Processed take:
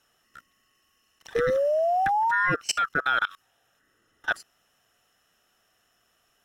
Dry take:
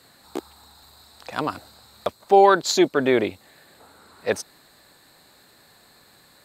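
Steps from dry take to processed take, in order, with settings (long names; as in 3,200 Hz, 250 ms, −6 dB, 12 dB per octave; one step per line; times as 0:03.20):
neighbouring bands swapped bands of 1,000 Hz
sound drawn into the spectrogram rise, 0:01.35–0:02.52, 460–1,100 Hz −18 dBFS
output level in coarse steps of 23 dB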